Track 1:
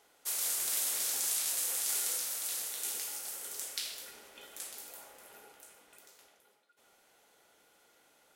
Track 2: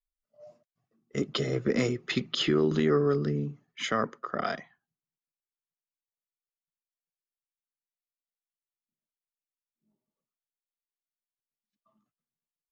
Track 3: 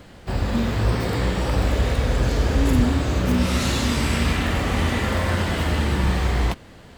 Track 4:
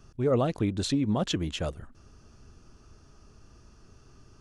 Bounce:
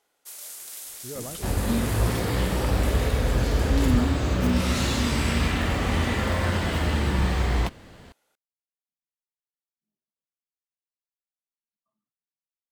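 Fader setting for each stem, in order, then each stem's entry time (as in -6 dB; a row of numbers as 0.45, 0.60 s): -6.5, -14.0, -2.5, -13.0 dB; 0.00, 0.00, 1.15, 0.85 s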